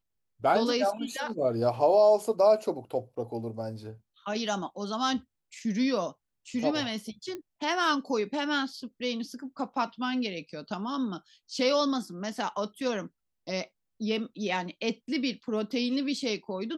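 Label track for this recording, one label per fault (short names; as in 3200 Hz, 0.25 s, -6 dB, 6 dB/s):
7.350000	7.350000	pop -24 dBFS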